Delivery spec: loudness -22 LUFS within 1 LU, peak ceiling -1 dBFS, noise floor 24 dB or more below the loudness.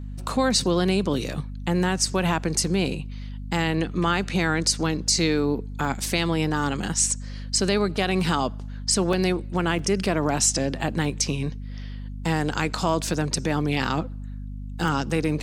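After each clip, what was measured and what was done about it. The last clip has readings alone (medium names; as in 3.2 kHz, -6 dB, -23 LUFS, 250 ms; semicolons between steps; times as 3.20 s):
dropouts 5; longest dropout 2.5 ms; hum 50 Hz; highest harmonic 250 Hz; hum level -31 dBFS; loudness -24.0 LUFS; peak level -8.0 dBFS; loudness target -22.0 LUFS
-> interpolate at 5.85/9.13/9.79/13.14/14.88 s, 2.5 ms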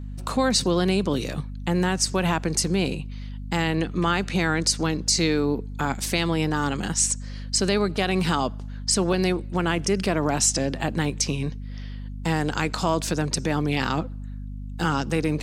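dropouts 0; hum 50 Hz; highest harmonic 250 Hz; hum level -31 dBFS
-> hum notches 50/100/150/200/250 Hz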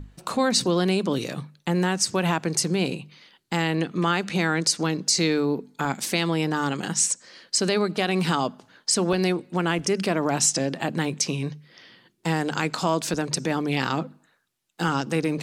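hum not found; loudness -24.5 LUFS; peak level -8.0 dBFS; loudness target -22.0 LUFS
-> trim +2.5 dB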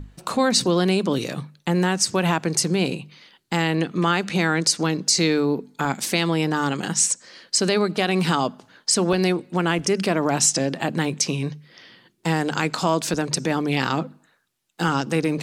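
loudness -22.0 LUFS; peak level -5.5 dBFS; noise floor -63 dBFS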